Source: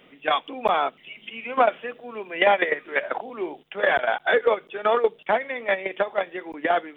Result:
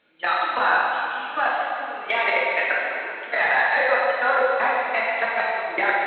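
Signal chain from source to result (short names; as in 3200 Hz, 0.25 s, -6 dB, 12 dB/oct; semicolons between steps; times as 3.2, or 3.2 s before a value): high shelf 3400 Hz -2.5 dB; added harmonics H 3 -34 dB, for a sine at -7 dBFS; bell 1400 Hz +10 dB 1.5 oct; wide varispeed 1.15×; level quantiser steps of 22 dB; plate-style reverb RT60 2.5 s, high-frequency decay 0.95×, DRR -5.5 dB; gain -1.5 dB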